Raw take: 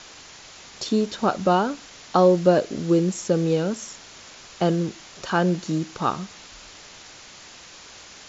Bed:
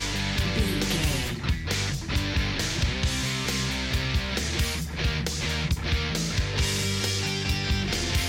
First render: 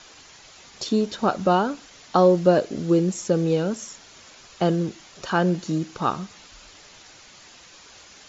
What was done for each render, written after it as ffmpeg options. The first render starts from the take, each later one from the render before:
-af "afftdn=nr=6:nf=-45"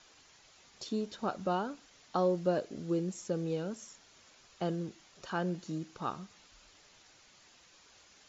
-af "volume=-13dB"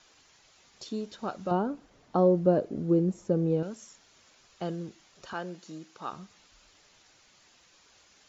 -filter_complex "[0:a]asettb=1/sr,asplit=3[a][b][c];[a]atrim=end=1.514[d];[b]atrim=start=1.51:end=3.63,asetpts=PTS-STARTPTS,afade=t=in:d=0.004:c=qsin,afade=t=out:st=2.116:d=0.004:c=qsin,tiltshelf=f=1.3k:g=9.5[e];[c]atrim=start=3.626[f];[d][e]acrossfade=d=0.004:c1=hsin:c2=qsin[g];[g][f]acrossfade=d=0.004:c1=qsin:c2=hsin,asettb=1/sr,asplit=3[h][i][j];[h]atrim=end=5.334[k];[i]atrim=start=5.33:end=6.13,asetpts=PTS-STARTPTS,afade=t=in:d=0.004:c=qsin,afade=t=out:st=0.796:d=0.004:c=qsin,highpass=f=400:p=1[l];[j]atrim=start=6.126[m];[k][l]acrossfade=d=0.004:c1=hsin:c2=qsin[n];[n][m]acrossfade=d=0.004:c1=qsin:c2=hsin"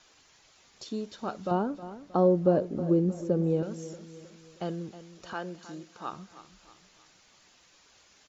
-af "aecho=1:1:315|630|945|1260:0.188|0.0866|0.0399|0.0183"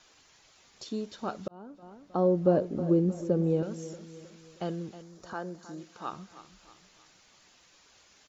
-filter_complex "[0:a]asettb=1/sr,asplit=3[a][b][c];[a]atrim=end=5.024[d];[b]atrim=start=5.02:end=5.78,asetpts=PTS-STARTPTS,afade=t=in:d=0.004:c=qsin,afade=t=out:st=0.756:d=0.004:c=qsin,equalizer=f=2.8k:w=1.4:g=-11[e];[c]atrim=start=5.776[f];[d][e]acrossfade=d=0.004:c1=hsin:c2=qsin[g];[g][f]acrossfade=d=0.004:c1=qsin:c2=hsin,asplit=2[h][i];[h]atrim=end=1.48,asetpts=PTS-STARTPTS,afade=t=out:st=1.476:d=0.004:c=hsin[j];[i]atrim=start=1.48,asetpts=PTS-STARTPTS,afade=t=in:d=1.04[k];[j][k]concat=n=2:v=0:a=1"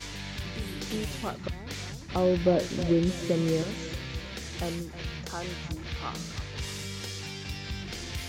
-filter_complex "[1:a]volume=-10.5dB[a];[0:a][a]amix=inputs=2:normalize=0"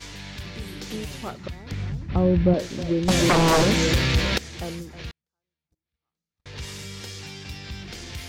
-filter_complex "[0:a]asettb=1/sr,asplit=3[a][b][c];[a]atrim=end=1.714[d];[b]atrim=start=1.71:end=2.54,asetpts=PTS-STARTPTS,afade=t=in:d=0.004:c=qsin,afade=t=out:st=0.826:d=0.004:c=qsin,bass=f=250:g=12,treble=f=4k:g=-14[e];[c]atrim=start=2.536[f];[d][e]acrossfade=d=0.004:c1=hsin:c2=qsin[g];[g][f]acrossfade=d=0.004:c1=qsin:c2=hsin,asettb=1/sr,asplit=3[h][i][j];[h]atrim=end=3.084[k];[i]atrim=start=3.08:end=4.38,asetpts=PTS-STARTPTS,afade=t=in:d=0.004:c=qsin,afade=t=out:st=1.296:d=0.004:c=qsin,aeval=exprs='0.2*sin(PI/2*4.47*val(0)/0.2)':c=same[l];[j]atrim=start=4.376[m];[k][l]acrossfade=d=0.004:c1=hsin:c2=qsin[n];[n][m]acrossfade=d=0.004:c1=qsin:c2=hsin,asettb=1/sr,asplit=3[o][p][q];[o]atrim=end=5.114[r];[p]atrim=start=5.11:end=6.46,asetpts=PTS-STARTPTS,afade=t=in:d=0.004:c=qsin,afade=t=out:st=1.346:d=0.004:c=qsin,agate=range=-53dB:threshold=-27dB:ratio=16:release=100:detection=peak[s];[q]atrim=start=6.456[t];[r][s]acrossfade=d=0.004:c1=hsin:c2=qsin[u];[u][t]acrossfade=d=0.004:c1=qsin:c2=hsin"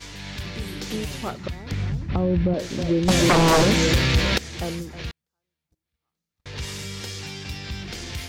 -af "alimiter=limit=-16dB:level=0:latency=1:release=215,dynaudnorm=f=150:g=3:m=3.5dB"

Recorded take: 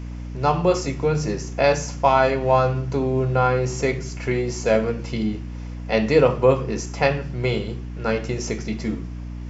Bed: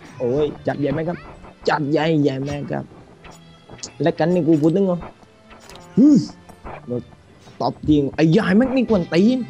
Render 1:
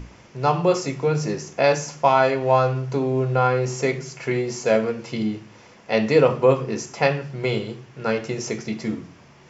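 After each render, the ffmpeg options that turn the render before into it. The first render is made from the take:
-af "bandreject=f=60:t=h:w=6,bandreject=f=120:t=h:w=6,bandreject=f=180:t=h:w=6,bandreject=f=240:t=h:w=6,bandreject=f=300:t=h:w=6"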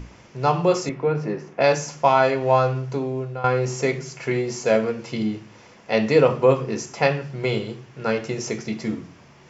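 -filter_complex "[0:a]asettb=1/sr,asplit=3[a][b][c];[a]atrim=end=0.894[d];[b]atrim=start=0.89:end=1.61,asetpts=PTS-STARTPTS,afade=t=in:d=0.004:c=qsin,afade=t=out:st=0.716:d=0.004:c=qsin,highpass=150,lowpass=2.2k[e];[c]atrim=start=1.606[f];[d][e]acrossfade=d=0.004:c1=hsin:c2=qsin[g];[g][f]acrossfade=d=0.004:c1=qsin:c2=hsin,asplit=2[h][i];[h]atrim=end=3.44,asetpts=PTS-STARTPTS,afade=t=out:st=2.47:d=0.97:c=qsin:silence=0.188365[j];[i]atrim=start=3.44,asetpts=PTS-STARTPTS,afade=t=in:d=0.004:c=hsin:silence=0.188365[k];[j][k]concat=n=2:v=0:a=1"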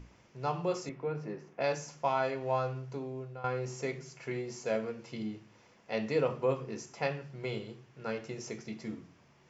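-af "volume=-13.5dB"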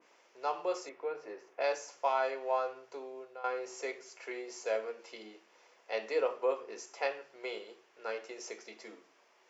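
-af "highpass=f=410:w=0.5412,highpass=f=410:w=1.3066,adynamicequalizer=threshold=0.00398:dfrequency=2300:dqfactor=0.7:tfrequency=2300:tqfactor=0.7:attack=5:release=100:ratio=0.375:range=2:mode=cutabove:tftype=highshelf"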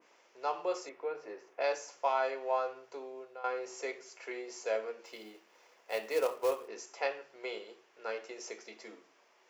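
-filter_complex "[0:a]asettb=1/sr,asplit=3[a][b][c];[a]atrim=end=5.054[d];[b]atrim=start=5.05:end=6.68,asetpts=PTS-STARTPTS,afade=t=in:d=0.004:c=qsin,afade=t=out:st=1.626:d=0.004:c=qsin,acrusher=bits=4:mode=log:mix=0:aa=0.000001[e];[c]atrim=start=6.676[f];[d][e]acrossfade=d=0.004:c1=hsin:c2=qsin[g];[g][f]acrossfade=d=0.004:c1=qsin:c2=hsin"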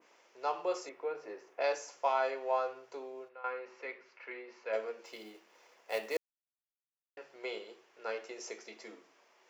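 -filter_complex "[0:a]asplit=3[a][b][c];[a]afade=t=out:st=3.28:d=0.02[d];[b]highpass=f=170:w=0.5412,highpass=f=170:w=1.3066,equalizer=f=280:t=q:w=4:g=-5,equalizer=f=410:t=q:w=4:g=-9,equalizer=f=700:t=q:w=4:g=-10,equalizer=f=3.3k:t=q:w=4:g=-6,lowpass=f=3.4k:w=0.5412,lowpass=f=3.4k:w=1.3066,afade=t=in:st=3.28:d=0.02,afade=t=out:st=4.72:d=0.02[e];[c]afade=t=in:st=4.72:d=0.02[f];[d][e][f]amix=inputs=3:normalize=0,asplit=3[g][h][i];[g]atrim=end=6.17,asetpts=PTS-STARTPTS,afade=t=out:st=6.166:d=0.004:c=hsin[j];[h]atrim=start=6.17:end=7.17,asetpts=PTS-STARTPTS,volume=0[k];[i]atrim=start=7.17,asetpts=PTS-STARTPTS,afade=t=in:d=0.004:c=hsin[l];[j][k][l]concat=n=3:v=0:a=1"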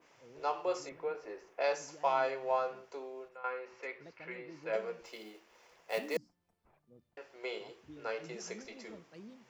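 -filter_complex "[1:a]volume=-36.5dB[a];[0:a][a]amix=inputs=2:normalize=0"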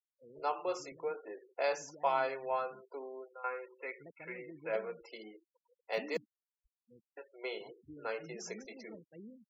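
-af "adynamicequalizer=threshold=0.00562:dfrequency=590:dqfactor=1.2:tfrequency=590:tqfactor=1.2:attack=5:release=100:ratio=0.375:range=3:mode=cutabove:tftype=bell,afftfilt=real='re*gte(hypot(re,im),0.00398)':imag='im*gte(hypot(re,im),0.00398)':win_size=1024:overlap=0.75"

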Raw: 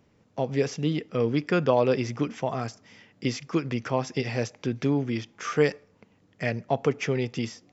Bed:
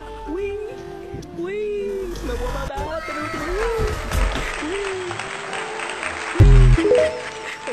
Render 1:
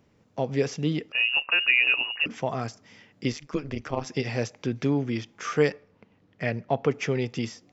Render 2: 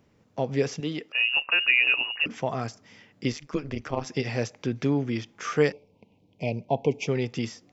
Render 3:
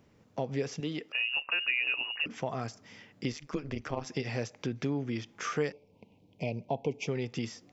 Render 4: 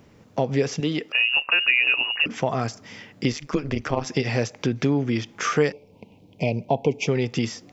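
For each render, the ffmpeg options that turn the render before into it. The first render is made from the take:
-filter_complex "[0:a]asettb=1/sr,asplit=3[a][b][c];[a]atrim=end=1.124[d];[b]atrim=start=1.12:end=2.26,asetpts=PTS-STARTPTS,afade=t=in:d=0.004:c=qsin,afade=t=out:st=1.136:d=0.004:c=qsin,lowpass=f=2.6k:t=q:w=0.5098,lowpass=f=2.6k:t=q:w=0.6013,lowpass=f=2.6k:t=q:w=0.9,lowpass=f=2.6k:t=q:w=2.563,afreqshift=-3000[e];[c]atrim=start=2.256[f];[d][e]acrossfade=d=0.004:c1=hsin:c2=qsin[g];[g][f]acrossfade=d=0.004:c1=qsin:c2=hsin,asettb=1/sr,asplit=3[h][i][j];[h]atrim=end=3.324[k];[i]atrim=start=3.32:end=4.06,asetpts=PTS-STARTPTS,afade=t=in:d=0.004:c=qsin,afade=t=out:st=0.736:d=0.004:c=qsin,tremolo=f=150:d=0.857[l];[j]atrim=start=4.056[m];[k][l]acrossfade=d=0.004:c1=hsin:c2=qsin[n];[n][m]acrossfade=d=0.004:c1=qsin:c2=hsin,asettb=1/sr,asplit=3[o][p][q];[o]atrim=end=5.694[r];[p]atrim=start=5.69:end=6.89,asetpts=PTS-STARTPTS,afade=t=in:d=0.004:c=qsin,afade=t=out:st=1.196:d=0.004:c=qsin,lowpass=4.3k[s];[q]atrim=start=6.886[t];[r][s]acrossfade=d=0.004:c1=hsin:c2=qsin[u];[u][t]acrossfade=d=0.004:c1=qsin:c2=hsin"
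-filter_complex "[0:a]asettb=1/sr,asplit=3[a][b][c];[a]atrim=end=0.804[d];[b]atrim=start=0.8:end=1.33,asetpts=PTS-STARTPTS,afade=t=in:d=0.004:c=qsin,afade=t=out:st=0.526:d=0.004:c=qsin,highpass=f=380:p=1[e];[c]atrim=start=1.326[f];[d][e]acrossfade=d=0.004:c1=hsin:c2=qsin[g];[g][f]acrossfade=d=0.004:c1=qsin:c2=hsin,asplit=3[h][i][j];[h]afade=t=out:st=5.71:d=0.02[k];[i]asuperstop=centerf=1500:order=12:qfactor=1.2,afade=t=in:st=5.71:d=0.02,afade=t=out:st=7.07:d=0.02[l];[j]afade=t=in:st=7.07:d=0.02[m];[k][l][m]amix=inputs=3:normalize=0"
-af "acompressor=threshold=-34dB:ratio=2"
-af "volume=10.5dB"

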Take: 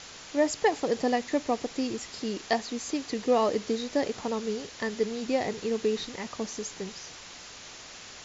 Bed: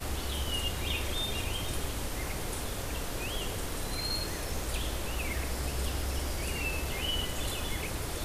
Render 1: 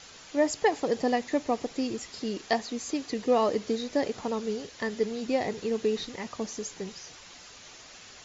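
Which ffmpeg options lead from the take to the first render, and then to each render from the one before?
-af "afftdn=nr=6:nf=-46"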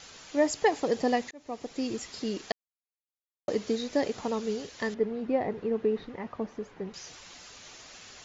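-filter_complex "[0:a]asettb=1/sr,asplit=3[a][b][c];[a]atrim=end=4.944[d];[b]atrim=start=4.94:end=6.94,asetpts=PTS-STARTPTS,afade=t=in:d=0.004:c=qsin,afade=t=out:st=1.996:d=0.004:c=qsin,lowpass=1.6k[e];[c]atrim=start=6.936[f];[d][e]acrossfade=d=0.004:c1=hsin:c2=qsin[g];[g][f]acrossfade=d=0.004:c1=qsin:c2=hsin,asplit=4[h][i][j][k];[h]atrim=end=1.31,asetpts=PTS-STARTPTS,afade=t=out:st=1.306:d=0.004:c=hsin[l];[i]atrim=start=1.31:end=2.52,asetpts=PTS-STARTPTS,afade=t=in:d=0.63,afade=t=out:st=1.206:d=0.004:c=hsin[m];[j]atrim=start=2.52:end=3.48,asetpts=PTS-STARTPTS,volume=0[n];[k]atrim=start=3.48,asetpts=PTS-STARTPTS,afade=t=in:d=0.004:c=hsin[o];[l][m][n][o]concat=n=4:v=0:a=1"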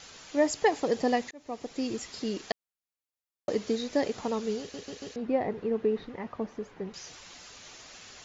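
-filter_complex "[0:a]asplit=5[a][b][c][d][e];[a]atrim=end=4.742[f];[b]atrim=start=4.598:end=4.742[g];[c]atrim=start=4.598:end=4.742[h];[d]atrim=start=4.598:end=4.742[i];[e]atrim=start=5.158[j];[f][g]acrossfade=d=0.004:c1=hsin:c2=hsin[k];[k][h]acrossfade=d=0.004:c1=hsin:c2=hsin[l];[l][i]acrossfade=d=0.004:c1=hsin:c2=hsin[m];[m][j]acrossfade=d=0.004:c1=hsin:c2=hsin"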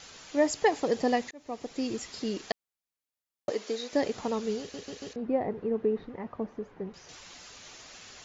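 -filter_complex "[0:a]asettb=1/sr,asplit=3[a][b][c];[a]atrim=end=3.504[d];[b]atrim=start=3.5:end=3.93,asetpts=PTS-STARTPTS,afade=t=in:d=0.004:c=qsin,afade=t=out:st=0.426:d=0.004:c=qsin,highpass=400[e];[c]atrim=start=3.926[f];[d][e]acrossfade=d=0.004:c1=hsin:c2=qsin[g];[g][f]acrossfade=d=0.004:c1=qsin:c2=hsin,asettb=1/sr,asplit=3[h][i][j];[h]atrim=end=5.134[k];[i]atrim=start=5.13:end=7.09,asetpts=PTS-STARTPTS,afade=t=in:d=0.004:c=qsin,afade=t=out:st=1.956:d=0.004:c=qsin,highshelf=f=2.3k:g=-11.5[l];[j]atrim=start=7.086[m];[k][l]acrossfade=d=0.004:c1=hsin:c2=qsin[n];[n][m]acrossfade=d=0.004:c1=qsin:c2=hsin"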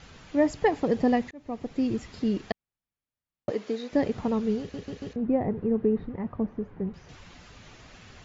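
-af "bass=f=250:g=13,treble=f=4k:g=-12"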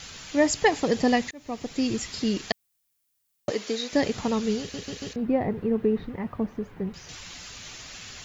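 -af "crystalizer=i=7.5:c=0"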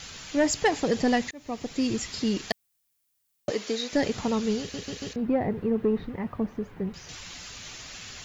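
-af "asoftclip=type=tanh:threshold=-14dB"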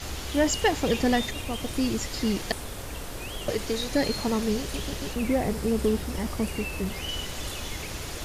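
-filter_complex "[1:a]volume=-1dB[a];[0:a][a]amix=inputs=2:normalize=0"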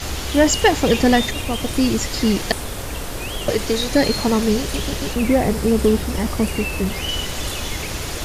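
-af "volume=8.5dB"

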